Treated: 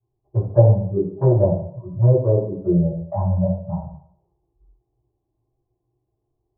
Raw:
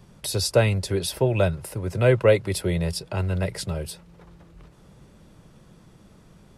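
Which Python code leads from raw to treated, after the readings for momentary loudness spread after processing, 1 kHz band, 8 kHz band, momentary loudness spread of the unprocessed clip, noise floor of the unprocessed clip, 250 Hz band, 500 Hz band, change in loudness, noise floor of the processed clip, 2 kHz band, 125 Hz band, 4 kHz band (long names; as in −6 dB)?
12 LU, +0.5 dB, below −40 dB, 12 LU, −53 dBFS, +6.0 dB, +2.0 dB, +4.0 dB, −77 dBFS, below −30 dB, +7.0 dB, below −40 dB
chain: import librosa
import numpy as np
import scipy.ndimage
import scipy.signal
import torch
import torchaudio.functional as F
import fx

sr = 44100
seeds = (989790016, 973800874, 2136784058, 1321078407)

y = fx.noise_reduce_blind(x, sr, reduce_db=27)
y = scipy.signal.sosfilt(scipy.signal.butter(12, 1000.0, 'lowpass', fs=sr, output='sos'), y)
y = fx.rider(y, sr, range_db=4, speed_s=0.5)
y = fx.env_flanger(y, sr, rest_ms=2.7, full_db=-16.5)
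y = fx.rev_fdn(y, sr, rt60_s=0.68, lf_ratio=0.85, hf_ratio=0.25, size_ms=50.0, drr_db=-9.0)
y = y * librosa.db_to_amplitude(-5.5)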